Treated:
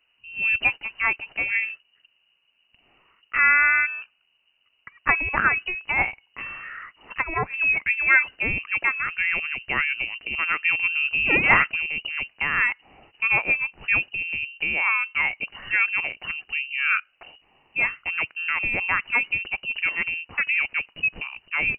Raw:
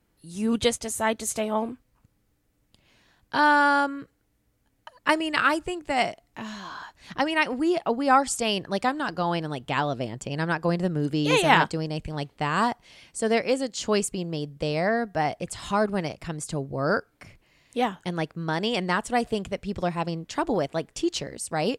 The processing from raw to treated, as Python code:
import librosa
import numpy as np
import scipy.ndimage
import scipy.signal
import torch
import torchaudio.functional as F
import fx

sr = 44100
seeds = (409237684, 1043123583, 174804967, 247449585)

y = fx.freq_invert(x, sr, carrier_hz=2900)
y = fx.env_lowpass_down(y, sr, base_hz=1000.0, full_db=-19.5, at=(6.02, 7.54))
y = y * librosa.db_to_amplitude(1.5)